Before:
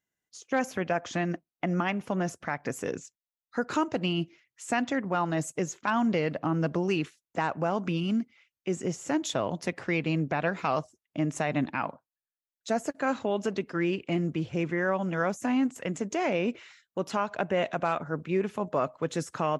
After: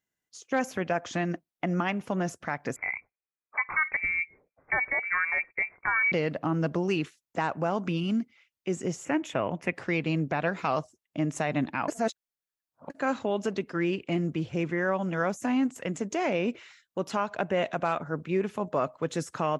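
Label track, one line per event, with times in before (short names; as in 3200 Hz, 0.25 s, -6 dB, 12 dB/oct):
2.760000	6.120000	inverted band carrier 2500 Hz
9.050000	9.740000	resonant high shelf 3200 Hz -8.5 dB, Q 3
11.880000	12.900000	reverse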